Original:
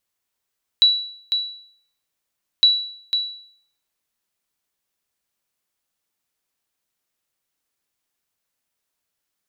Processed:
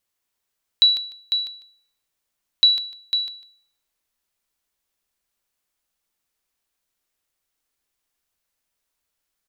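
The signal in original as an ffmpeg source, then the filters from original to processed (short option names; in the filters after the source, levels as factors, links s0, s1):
-f lavfi -i "aevalsrc='0.447*(sin(2*PI*3930*mod(t,1.81))*exp(-6.91*mod(t,1.81)/0.6)+0.422*sin(2*PI*3930*max(mod(t,1.81)-0.5,0))*exp(-6.91*max(mod(t,1.81)-0.5,0)/0.6))':d=3.62:s=44100"
-filter_complex "[0:a]asubboost=boost=2.5:cutoff=73,asplit=2[s0][s1];[s1]aecho=0:1:150|300:0.335|0.0569[s2];[s0][s2]amix=inputs=2:normalize=0"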